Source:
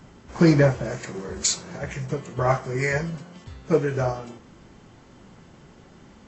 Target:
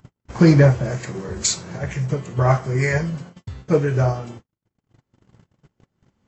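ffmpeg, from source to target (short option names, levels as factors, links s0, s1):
-af "equalizer=f=110:w=1.7:g=9,agate=range=0.001:threshold=0.0112:ratio=16:detection=peak,acompressor=mode=upward:threshold=0.0251:ratio=2.5,volume=1.26"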